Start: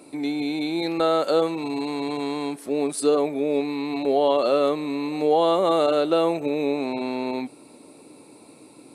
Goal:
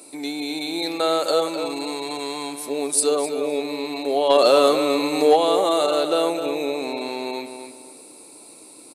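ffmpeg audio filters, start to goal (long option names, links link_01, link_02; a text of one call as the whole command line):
ffmpeg -i in.wav -filter_complex "[0:a]bass=frequency=250:gain=-10,treble=frequency=4000:gain=12,asplit=3[link_01][link_02][link_03];[link_01]afade=type=out:start_time=4.29:duration=0.02[link_04];[link_02]acontrast=62,afade=type=in:start_time=4.29:duration=0.02,afade=type=out:start_time=5.35:duration=0.02[link_05];[link_03]afade=type=in:start_time=5.35:duration=0.02[link_06];[link_04][link_05][link_06]amix=inputs=3:normalize=0,asplit=2[link_07][link_08];[link_08]adelay=256,lowpass=frequency=4500:poles=1,volume=-8dB,asplit=2[link_09][link_10];[link_10]adelay=256,lowpass=frequency=4500:poles=1,volume=0.32,asplit=2[link_11][link_12];[link_12]adelay=256,lowpass=frequency=4500:poles=1,volume=0.32,asplit=2[link_13][link_14];[link_14]adelay=256,lowpass=frequency=4500:poles=1,volume=0.32[link_15];[link_07][link_09][link_11][link_13][link_15]amix=inputs=5:normalize=0" out.wav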